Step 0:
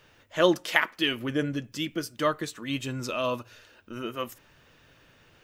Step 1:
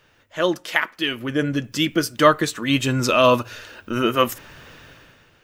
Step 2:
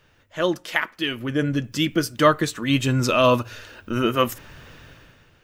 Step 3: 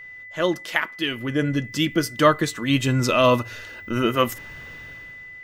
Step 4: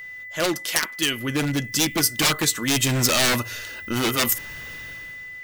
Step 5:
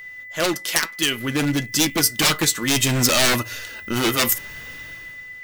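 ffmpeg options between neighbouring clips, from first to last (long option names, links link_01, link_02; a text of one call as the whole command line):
ffmpeg -i in.wav -af "equalizer=frequency=1500:width_type=o:width=0.77:gain=2,dynaudnorm=framelen=120:gausssize=11:maxgain=15dB" out.wav
ffmpeg -i in.wav -af "lowshelf=frequency=160:gain=7.5,volume=-2.5dB" out.wav
ffmpeg -i in.wav -af "aeval=exprs='val(0)+0.0126*sin(2*PI*2000*n/s)':channel_layout=same" out.wav
ffmpeg -i in.wav -af "aeval=exprs='0.133*(abs(mod(val(0)/0.133+3,4)-2)-1)':channel_layout=same,crystalizer=i=3:c=0" out.wav
ffmpeg -i in.wav -filter_complex "[0:a]asplit=2[link_01][link_02];[link_02]aeval=exprs='val(0)*gte(abs(val(0)),0.0376)':channel_layout=same,volume=-11.5dB[link_03];[link_01][link_03]amix=inputs=2:normalize=0,flanger=delay=2.7:depth=3.5:regen=79:speed=0.6:shape=triangular,volume=4.5dB" out.wav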